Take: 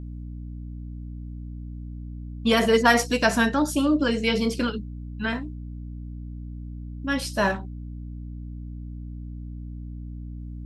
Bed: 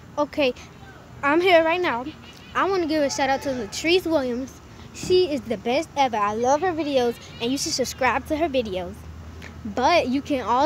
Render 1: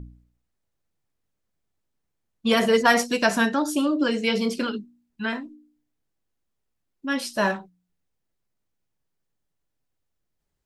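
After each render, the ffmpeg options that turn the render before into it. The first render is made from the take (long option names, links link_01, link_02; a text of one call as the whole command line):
ffmpeg -i in.wav -af "bandreject=frequency=60:width_type=h:width=4,bandreject=frequency=120:width_type=h:width=4,bandreject=frequency=180:width_type=h:width=4,bandreject=frequency=240:width_type=h:width=4,bandreject=frequency=300:width_type=h:width=4" out.wav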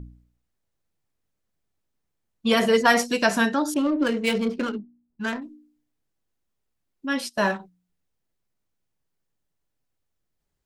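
ffmpeg -i in.wav -filter_complex "[0:a]asettb=1/sr,asplit=3[link_01][link_02][link_03];[link_01]atrim=end=3.744[link_04];[link_02]atrim=start=3.74:end=5.42,asetpts=PTS-STARTPTS,afade=type=in:duration=0.004:curve=qsin,afade=type=out:start_time=1.676:duration=0.004:curve=qsin,adynamicsmooth=sensitivity=3:basefreq=1000[link_05];[link_03]atrim=start=5.416[link_06];[link_04][link_05]acrossfade=duration=0.004:curve1=hsin:curve2=qsin[link_07];[link_07][link_06]acrossfade=duration=0.004:curve1=qsin:curve2=hsin,asplit=3[link_08][link_09][link_10];[link_08]afade=type=out:start_time=7.16:duration=0.02[link_11];[link_09]agate=range=-17dB:threshold=-34dB:ratio=16:release=100:detection=peak,afade=type=in:start_time=7.16:duration=0.02,afade=type=out:start_time=7.58:duration=0.02[link_12];[link_10]afade=type=in:start_time=7.58:duration=0.02[link_13];[link_11][link_12][link_13]amix=inputs=3:normalize=0" out.wav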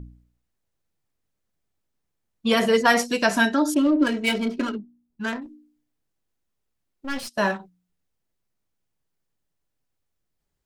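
ffmpeg -i in.wav -filter_complex "[0:a]asettb=1/sr,asplit=3[link_01][link_02][link_03];[link_01]atrim=end=3.364[link_04];[link_02]atrim=start=3.36:end=4.75,asetpts=PTS-STARTPTS,afade=type=in:duration=0.004:curve=qsin,afade=type=out:start_time=1.386:duration=0.004:curve=qsin,aecho=1:1:3.1:0.65,atrim=end_sample=61299[link_05];[link_03]atrim=start=4.746[link_06];[link_04][link_05]acrossfade=duration=0.004:curve1=hsin:curve2=qsin[link_07];[link_07][link_06]acrossfade=duration=0.004:curve1=qsin:curve2=hsin,asplit=3[link_08][link_09][link_10];[link_08]afade=type=out:start_time=5.44:duration=0.02[link_11];[link_09]aeval=exprs='clip(val(0),-1,0.0106)':channel_layout=same,afade=type=in:start_time=5.44:duration=0.02,afade=type=out:start_time=7.27:duration=0.02[link_12];[link_10]afade=type=in:start_time=7.27:duration=0.02[link_13];[link_11][link_12][link_13]amix=inputs=3:normalize=0" out.wav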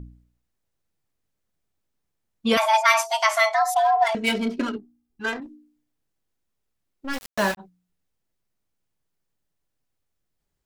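ffmpeg -i in.wav -filter_complex "[0:a]asettb=1/sr,asplit=3[link_01][link_02][link_03];[link_01]atrim=end=2.574[link_04];[link_02]atrim=start=2.57:end=4.15,asetpts=PTS-STARTPTS,afade=type=in:duration=0.004:curve=qsin,afade=type=out:start_time=1.576:duration=0.004:curve=qsin,afreqshift=430[link_05];[link_03]atrim=start=4.146[link_06];[link_04][link_05]acrossfade=duration=0.004:curve1=hsin:curve2=qsin[link_07];[link_07][link_06]acrossfade=duration=0.004:curve1=qsin:curve2=hsin,asettb=1/sr,asplit=3[link_08][link_09][link_10];[link_08]atrim=end=4.764[link_11];[link_09]atrim=start=4.76:end=5.4,asetpts=PTS-STARTPTS,afade=type=in:duration=0.004:curve=qsin,afade=type=out:start_time=0.636:duration=0.004:curve=qsin,aecho=1:1:2.5:0.66,atrim=end_sample=28224[link_12];[link_10]atrim=start=5.396[link_13];[link_11][link_12]acrossfade=duration=0.004:curve1=hsin:curve2=qsin[link_14];[link_14][link_13]acrossfade=duration=0.004:curve1=qsin:curve2=hsin,asplit=3[link_15][link_16][link_17];[link_15]afade=type=out:start_time=7.12:duration=0.02[link_18];[link_16]aeval=exprs='val(0)*gte(abs(val(0)),0.0531)':channel_layout=same,afade=type=in:start_time=7.12:duration=0.02,afade=type=out:start_time=7.57:duration=0.02[link_19];[link_17]afade=type=in:start_time=7.57:duration=0.02[link_20];[link_18][link_19][link_20]amix=inputs=3:normalize=0" out.wav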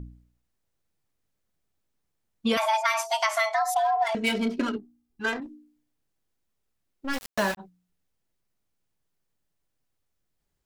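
ffmpeg -i in.wav -af "acompressor=threshold=-21dB:ratio=6" out.wav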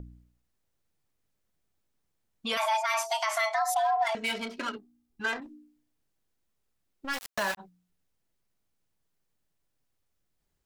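ffmpeg -i in.wav -filter_complex "[0:a]acrossover=split=620[link_01][link_02];[link_01]acompressor=threshold=-42dB:ratio=4[link_03];[link_02]alimiter=limit=-19.5dB:level=0:latency=1:release=22[link_04];[link_03][link_04]amix=inputs=2:normalize=0" out.wav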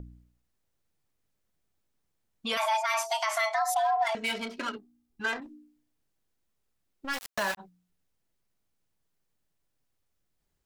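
ffmpeg -i in.wav -af anull out.wav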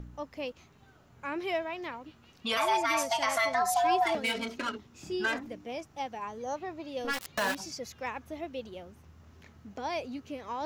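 ffmpeg -i in.wav -i bed.wav -filter_complex "[1:a]volume=-16dB[link_01];[0:a][link_01]amix=inputs=2:normalize=0" out.wav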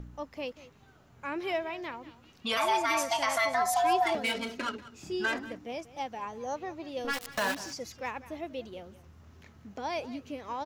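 ffmpeg -i in.wav -af "aecho=1:1:188:0.141" out.wav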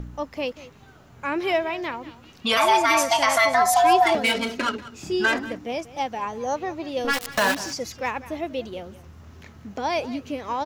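ffmpeg -i in.wav -af "volume=9dB" out.wav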